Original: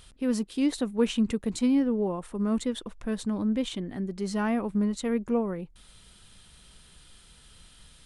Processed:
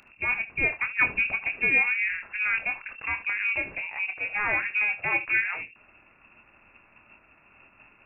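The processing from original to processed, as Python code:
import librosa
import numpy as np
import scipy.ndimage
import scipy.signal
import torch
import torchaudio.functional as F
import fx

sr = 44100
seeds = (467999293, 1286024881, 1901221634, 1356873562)

y = fx.spec_clip(x, sr, under_db=17)
y = fx.freq_invert(y, sr, carrier_hz=2700)
y = fx.room_early_taps(y, sr, ms=(26, 75), db=(-8.5, -16.5))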